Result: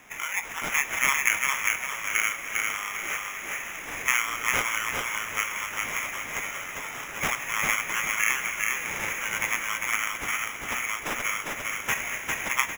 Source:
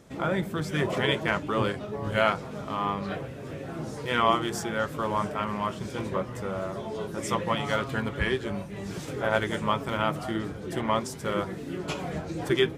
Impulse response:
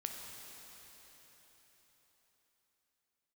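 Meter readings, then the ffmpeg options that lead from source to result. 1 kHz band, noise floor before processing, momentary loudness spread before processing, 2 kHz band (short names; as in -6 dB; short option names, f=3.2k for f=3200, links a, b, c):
-2.5 dB, -39 dBFS, 9 LU, +8.0 dB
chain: -filter_complex "[0:a]aemphasis=mode=production:type=cd,acompressor=threshold=-29dB:ratio=6,highpass=f=2.2k:t=q:w=4.4,acrusher=samples=10:mix=1:aa=0.000001,aecho=1:1:401|802|1203|1604|2005:0.708|0.262|0.0969|0.0359|0.0133,asplit=2[a][b];[1:a]atrim=start_sample=2205[c];[b][c]afir=irnorm=-1:irlink=0,volume=-4.5dB[d];[a][d]amix=inputs=2:normalize=0,volume=1.5dB"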